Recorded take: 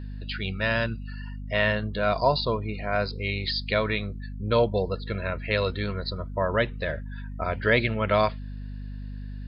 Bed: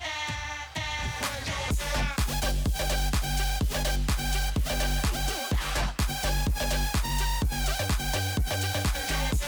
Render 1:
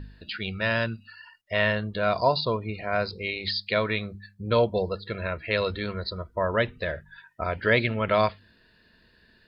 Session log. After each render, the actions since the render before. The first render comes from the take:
hum removal 50 Hz, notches 5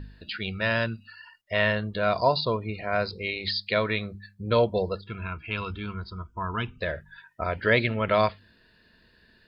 0:05.01–0:06.81: phaser with its sweep stopped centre 2,800 Hz, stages 8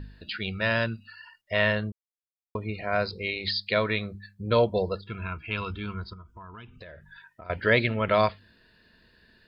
0:01.92–0:02.55: silence
0:06.13–0:07.50: downward compressor 5 to 1, threshold −43 dBFS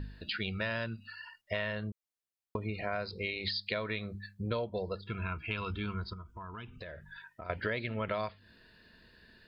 downward compressor 6 to 1, threshold −32 dBFS, peak gain reduction 15 dB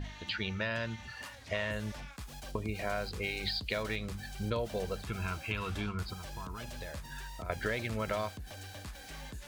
mix in bed −18 dB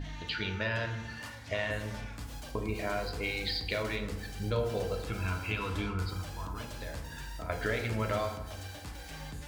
feedback delay network reverb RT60 1.1 s, low-frequency decay 1.3×, high-frequency decay 0.5×, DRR 3 dB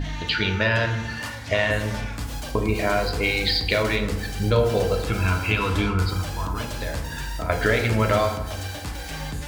level +11.5 dB

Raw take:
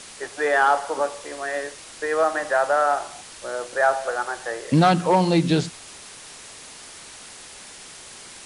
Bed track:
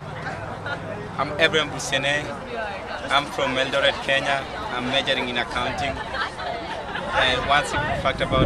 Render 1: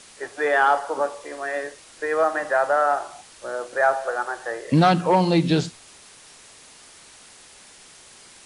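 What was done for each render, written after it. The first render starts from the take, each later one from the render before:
noise reduction from a noise print 6 dB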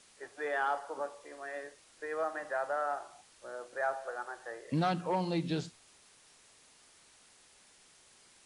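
level −14 dB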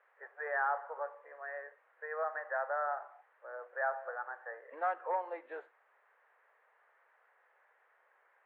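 elliptic band-pass filter 480–1,800 Hz, stop band 50 dB
spectral tilt +2 dB per octave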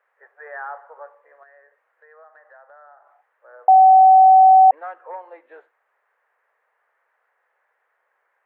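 0:01.43–0:03.07: downward compressor 2 to 1, threshold −55 dBFS
0:03.68–0:04.71: beep over 758 Hz −6.5 dBFS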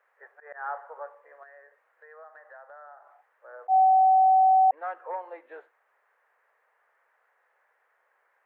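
volume swells 161 ms
downward compressor 6 to 1, threshold −18 dBFS, peak gain reduction 9 dB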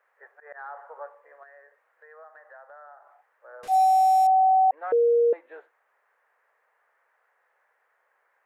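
0:00.56–0:00.98: downward compressor 3 to 1, threshold −36 dBFS
0:03.63–0:04.27: linear delta modulator 64 kbit/s, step −36.5 dBFS
0:04.92–0:05.33: beep over 471 Hz −16.5 dBFS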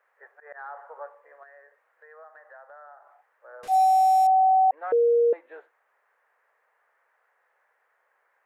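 no processing that can be heard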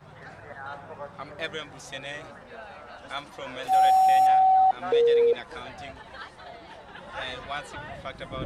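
mix in bed track −15 dB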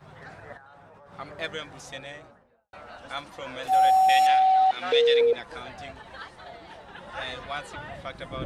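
0:00.57–0:01.12: output level in coarse steps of 17 dB
0:01.79–0:02.73: fade out and dull
0:04.09–0:05.21: meter weighting curve D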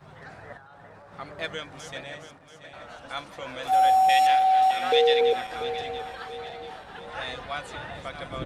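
feedback delay that plays each chunk backwards 342 ms, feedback 66%, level −10 dB
slap from a distant wall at 170 metres, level −28 dB

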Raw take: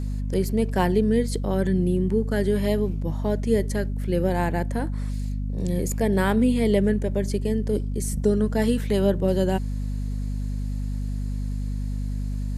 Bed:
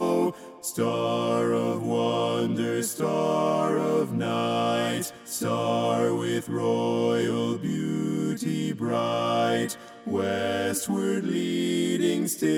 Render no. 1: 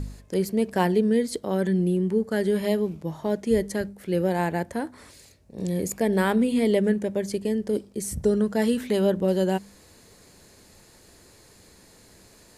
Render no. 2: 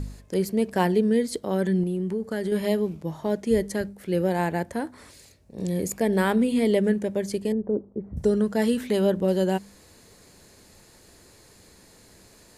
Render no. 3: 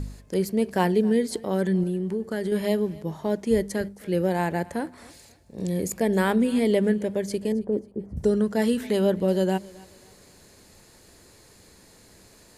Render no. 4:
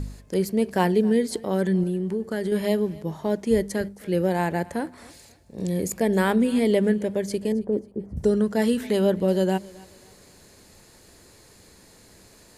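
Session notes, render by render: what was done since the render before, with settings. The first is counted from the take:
hum removal 50 Hz, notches 5
0:01.83–0:02.52: downward compressor 4 to 1, threshold −24 dBFS; 0:07.52–0:08.17: low-pass filter 1,100 Hz 24 dB per octave
feedback echo with a high-pass in the loop 269 ms, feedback 37%, high-pass 210 Hz, level −21.5 dB
level +1 dB

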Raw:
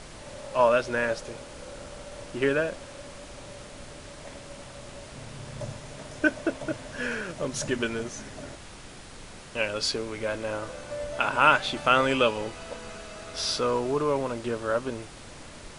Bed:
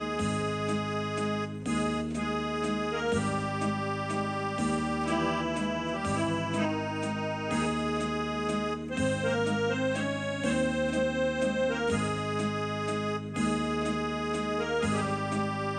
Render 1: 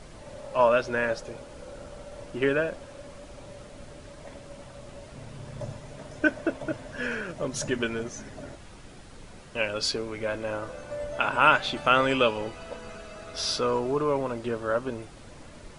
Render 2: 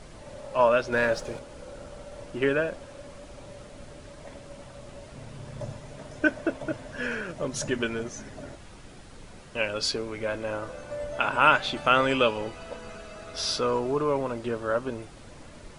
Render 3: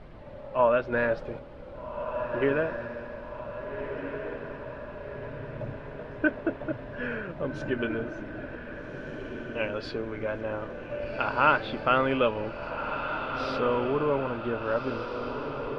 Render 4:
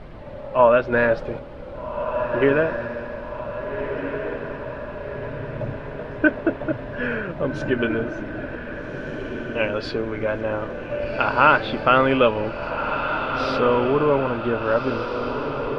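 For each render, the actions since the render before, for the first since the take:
broadband denoise 7 dB, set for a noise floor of −45 dBFS
0:00.92–0:01.39: leveller curve on the samples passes 1
high-frequency loss of the air 400 metres; feedback delay with all-pass diffusion 1,609 ms, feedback 56%, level −7 dB
level +7.5 dB; brickwall limiter −2 dBFS, peak gain reduction 2 dB

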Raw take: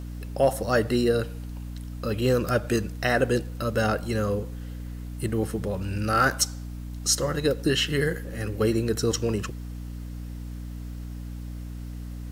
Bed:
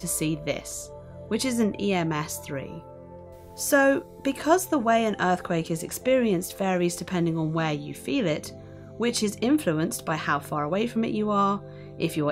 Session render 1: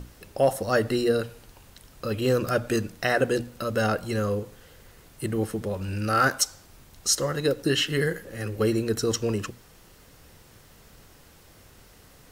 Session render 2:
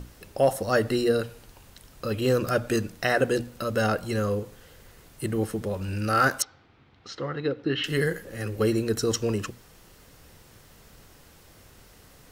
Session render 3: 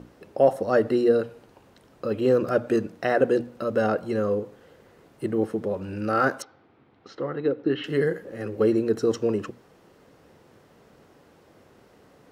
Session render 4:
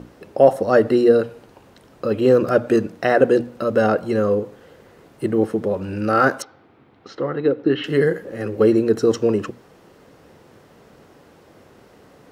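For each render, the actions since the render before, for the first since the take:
mains-hum notches 60/120/180/240/300 Hz
0:06.42–0:07.84: loudspeaker in its box 110–3,200 Hz, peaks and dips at 180 Hz −8 dB, 390 Hz −3 dB, 590 Hz −8 dB, 1,000 Hz −4 dB, 1,700 Hz −4 dB, 2,800 Hz −4 dB
high-pass filter 350 Hz 12 dB per octave; spectral tilt −4.5 dB per octave
level +6 dB

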